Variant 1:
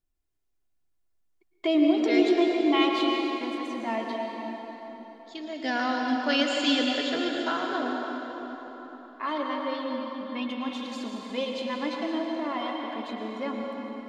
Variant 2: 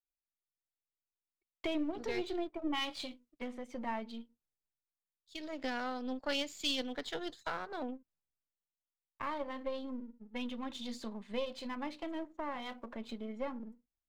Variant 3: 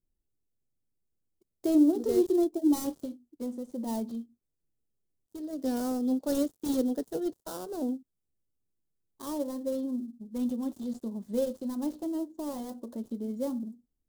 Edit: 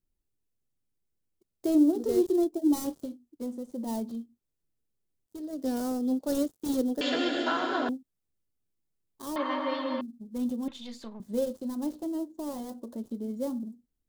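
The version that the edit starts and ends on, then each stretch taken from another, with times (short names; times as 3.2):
3
7.01–7.89 from 1
9.36–10.01 from 1
10.68–11.2 from 2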